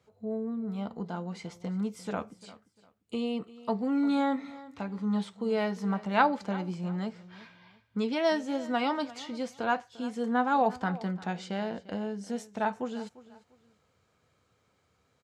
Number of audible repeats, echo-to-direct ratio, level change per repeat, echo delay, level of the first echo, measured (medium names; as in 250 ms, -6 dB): 2, -18.0 dB, -11.0 dB, 348 ms, -18.5 dB